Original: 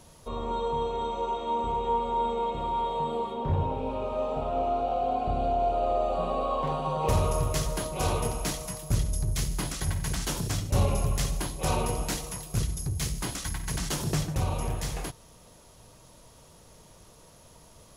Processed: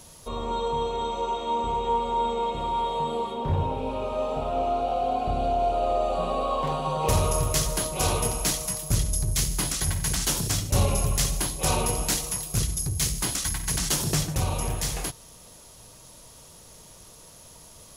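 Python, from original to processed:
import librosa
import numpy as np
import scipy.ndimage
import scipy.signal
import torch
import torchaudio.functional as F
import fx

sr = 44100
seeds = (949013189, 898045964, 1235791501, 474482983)

y = fx.high_shelf(x, sr, hz=3200.0, db=8.5)
y = y * 10.0 ** (1.5 / 20.0)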